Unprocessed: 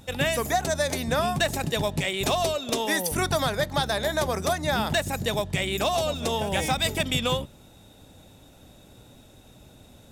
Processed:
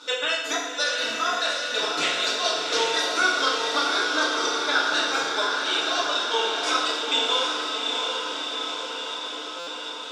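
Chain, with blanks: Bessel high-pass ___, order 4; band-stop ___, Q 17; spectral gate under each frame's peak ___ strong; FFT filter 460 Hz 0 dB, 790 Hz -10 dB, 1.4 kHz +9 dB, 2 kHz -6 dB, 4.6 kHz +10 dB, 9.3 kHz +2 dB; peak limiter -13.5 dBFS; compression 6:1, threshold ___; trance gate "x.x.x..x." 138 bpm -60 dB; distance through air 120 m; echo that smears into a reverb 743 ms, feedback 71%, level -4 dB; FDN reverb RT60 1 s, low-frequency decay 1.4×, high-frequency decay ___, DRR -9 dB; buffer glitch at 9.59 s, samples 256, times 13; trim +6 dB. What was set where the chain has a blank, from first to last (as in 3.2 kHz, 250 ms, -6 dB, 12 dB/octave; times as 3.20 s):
630 Hz, 1.8 kHz, -30 dB, -32 dBFS, 0.85×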